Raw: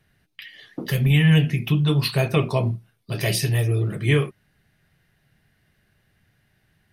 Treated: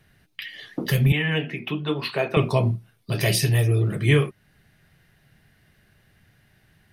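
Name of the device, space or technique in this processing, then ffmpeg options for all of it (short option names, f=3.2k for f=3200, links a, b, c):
parallel compression: -filter_complex "[0:a]asplit=2[a][b];[b]acompressor=threshold=-34dB:ratio=6,volume=-2dB[c];[a][c]amix=inputs=2:normalize=0,asettb=1/sr,asplit=3[d][e][f];[d]atrim=end=1.124[g];[e]atrim=start=1.12:end=2.37,asetpts=PTS-STARTPTS,afade=t=in:d=0.004:c=qsin,afade=t=out:st=1.246:d=0.004:c=qsin,acrossover=split=230 3400:gain=0.0708 1 0.141[h][i][j];[h][i][j]amix=inputs=3:normalize=0[k];[f]atrim=start=2.366[l];[g][k]acrossfade=d=0.004:c1=hsin:c2=qsin[m];[m][l]acrossfade=d=0.004:c1=qsin:c2=hsin"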